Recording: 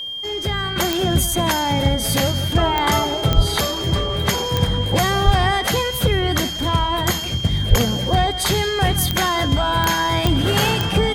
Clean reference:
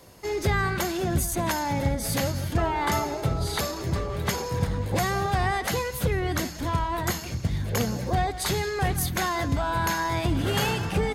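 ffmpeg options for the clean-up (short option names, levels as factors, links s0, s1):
-filter_complex "[0:a]adeclick=t=4,bandreject=f=3200:w=30,asplit=3[s0][s1][s2];[s0]afade=t=out:st=3.35:d=0.02[s3];[s1]highpass=f=140:w=0.5412,highpass=f=140:w=1.3066,afade=t=in:st=3.35:d=0.02,afade=t=out:st=3.47:d=0.02[s4];[s2]afade=t=in:st=3.47:d=0.02[s5];[s3][s4][s5]amix=inputs=3:normalize=0,asplit=3[s6][s7][s8];[s6]afade=t=out:st=5.25:d=0.02[s9];[s7]highpass=f=140:w=0.5412,highpass=f=140:w=1.3066,afade=t=in:st=5.25:d=0.02,afade=t=out:st=5.37:d=0.02[s10];[s8]afade=t=in:st=5.37:d=0.02[s11];[s9][s10][s11]amix=inputs=3:normalize=0,asplit=3[s12][s13][s14];[s12]afade=t=out:st=7.69:d=0.02[s15];[s13]highpass=f=140:w=0.5412,highpass=f=140:w=1.3066,afade=t=in:st=7.69:d=0.02,afade=t=out:st=7.81:d=0.02[s16];[s14]afade=t=in:st=7.81:d=0.02[s17];[s15][s16][s17]amix=inputs=3:normalize=0,asetnsamples=n=441:p=0,asendcmd='0.76 volume volume -7dB',volume=1"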